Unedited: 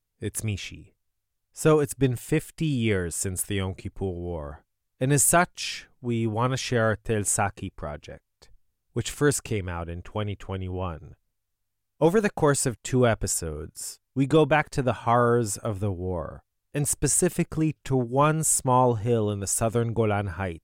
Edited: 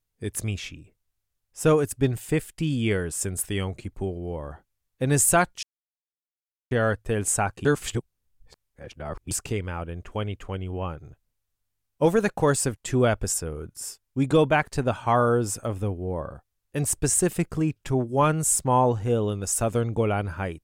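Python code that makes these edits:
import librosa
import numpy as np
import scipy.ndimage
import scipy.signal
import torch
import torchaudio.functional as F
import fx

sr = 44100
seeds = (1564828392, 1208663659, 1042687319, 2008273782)

y = fx.edit(x, sr, fx.silence(start_s=5.63, length_s=1.08),
    fx.reverse_span(start_s=7.65, length_s=1.66), tone=tone)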